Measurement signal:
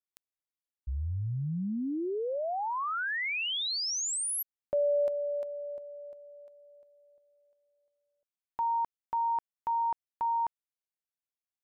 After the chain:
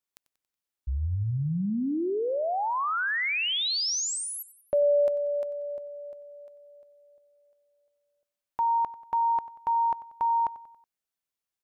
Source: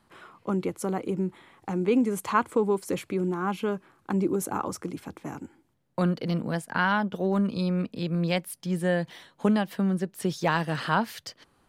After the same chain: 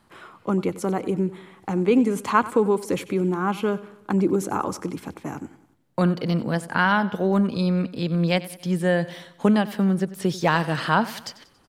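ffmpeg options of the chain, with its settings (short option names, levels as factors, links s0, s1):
-filter_complex "[0:a]acrossover=split=7300[s0][s1];[s1]acompressor=threshold=0.00631:ratio=4:attack=1:release=60[s2];[s0][s2]amix=inputs=2:normalize=0,asplit=2[s3][s4];[s4]aecho=0:1:93|186|279|372:0.133|0.0667|0.0333|0.0167[s5];[s3][s5]amix=inputs=2:normalize=0,volume=1.68"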